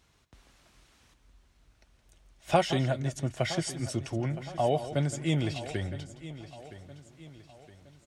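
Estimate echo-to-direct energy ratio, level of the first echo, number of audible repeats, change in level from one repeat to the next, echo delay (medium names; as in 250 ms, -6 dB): -10.5 dB, -13.0 dB, 6, no regular repeats, 168 ms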